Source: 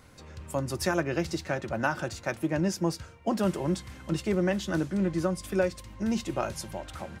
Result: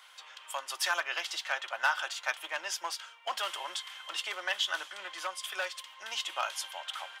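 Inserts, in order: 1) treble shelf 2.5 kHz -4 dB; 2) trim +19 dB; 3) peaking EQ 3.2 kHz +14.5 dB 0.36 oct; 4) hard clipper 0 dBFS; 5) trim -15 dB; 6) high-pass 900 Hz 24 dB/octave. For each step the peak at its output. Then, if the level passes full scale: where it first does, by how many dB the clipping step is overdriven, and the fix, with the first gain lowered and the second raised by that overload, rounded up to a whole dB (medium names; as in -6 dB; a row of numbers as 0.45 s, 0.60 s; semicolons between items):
-12.5 dBFS, +6.5 dBFS, +7.0 dBFS, 0.0 dBFS, -15.0 dBFS, -14.0 dBFS; step 2, 7.0 dB; step 2 +12 dB, step 5 -8 dB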